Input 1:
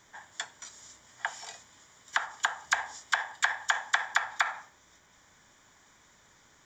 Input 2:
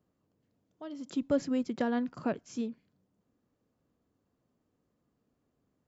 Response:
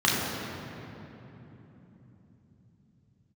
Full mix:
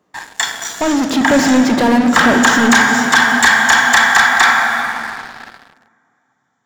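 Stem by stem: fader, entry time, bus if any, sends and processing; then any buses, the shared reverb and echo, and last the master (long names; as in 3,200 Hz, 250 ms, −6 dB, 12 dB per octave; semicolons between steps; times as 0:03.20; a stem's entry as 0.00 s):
+0.5 dB, 0.00 s, send −8.5 dB, noise gate −55 dBFS, range −20 dB; Bessel high-pass filter 360 Hz, order 2; high-shelf EQ 4,300 Hz +6 dB
+3.0 dB, 0.00 s, send −22 dB, leveller curve on the samples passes 1; mid-hump overdrive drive 31 dB, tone 2,800 Hz, clips at −24 dBFS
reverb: on, RT60 3.5 s, pre-delay 3 ms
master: leveller curve on the samples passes 3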